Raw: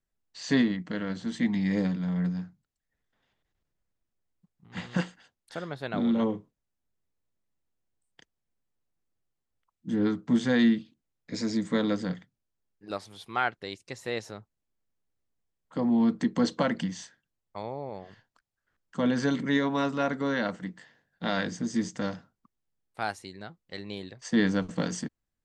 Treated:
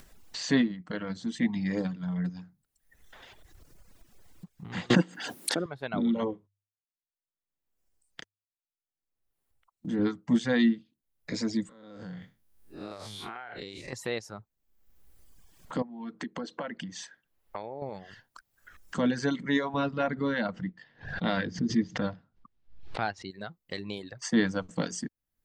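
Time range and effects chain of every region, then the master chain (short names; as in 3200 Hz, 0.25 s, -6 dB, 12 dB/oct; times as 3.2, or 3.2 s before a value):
4.9–5.66 HPF 120 Hz 24 dB/oct + bell 300 Hz +12 dB 1.1 oct + backwards sustainer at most 23 dB/s
6.33–9.99 gate -60 dBFS, range -44 dB + tone controls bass -4 dB, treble -3 dB + notches 50/100 Hz
11.69–13.93 time blur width 0.14 s + compressor 12:1, threshold -42 dBFS
15.82–17.82 compressor 2:1, threshold -39 dBFS + tone controls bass -8 dB, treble -8 dB
19.74–23.31 LPF 4500 Hz 24 dB/oct + low shelf 150 Hz +8.5 dB + backwards sustainer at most 120 dB/s
whole clip: reverb removal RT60 1.2 s; upward compressor, threshold -30 dBFS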